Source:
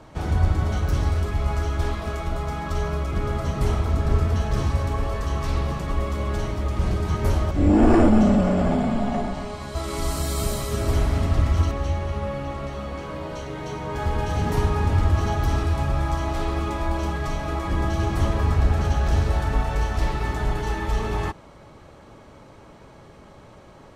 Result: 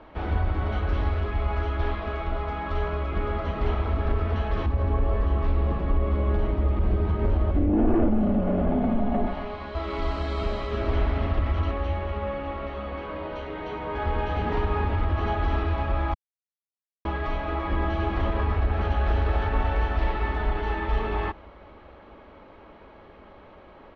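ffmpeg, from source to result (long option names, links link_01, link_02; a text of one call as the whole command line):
ffmpeg -i in.wav -filter_complex "[0:a]asettb=1/sr,asplit=3[link_01][link_02][link_03];[link_01]atrim=end=4.664[link_04];[link_02]atrim=start=4.66:end=9.27,asetpts=PTS-STARTPTS,afade=type=in:duration=0.004:curve=qsin,afade=type=out:start_time=4.606:duration=0.004:curve=qsin,tiltshelf=frequency=710:gain=6[link_05];[link_03]atrim=start=9.266[link_06];[link_04][link_05]acrossfade=duration=0.004:curve1=hsin:curve2=qsin[link_07];[link_07][link_06]acrossfade=duration=0.004:curve1=qsin:curve2=hsin,asplit=2[link_08][link_09];[link_09]afade=type=in:start_time=18.84:duration=0.01,afade=type=out:start_time=19.24:duration=0.01,aecho=0:1:250|500|750|1000|1250|1500|1750|2000|2250|2500|2750|3000:0.530884|0.371619|0.260133|0.182093|0.127465|0.0892257|0.062458|0.0437206|0.0306044|0.0214231|0.0149962|0.0104973[link_10];[link_08][link_10]amix=inputs=2:normalize=0,asplit=3[link_11][link_12][link_13];[link_11]atrim=end=16.14,asetpts=PTS-STARTPTS,afade=type=out:start_time=16.136:duration=0.004:curve=hsin[link_14];[link_12]atrim=start=16.14:end=17.05,asetpts=PTS-STARTPTS,volume=0[link_15];[link_13]atrim=start=17.05,asetpts=PTS-STARTPTS,afade=type=in:duration=0.004:curve=hsin[link_16];[link_14][link_15][link_16]concat=n=3:v=0:a=1,alimiter=limit=-12.5dB:level=0:latency=1:release=68,lowpass=frequency=3300:width=0.5412,lowpass=frequency=3300:width=1.3066,equalizer=frequency=130:width_type=o:width=0.78:gain=-14.5" out.wav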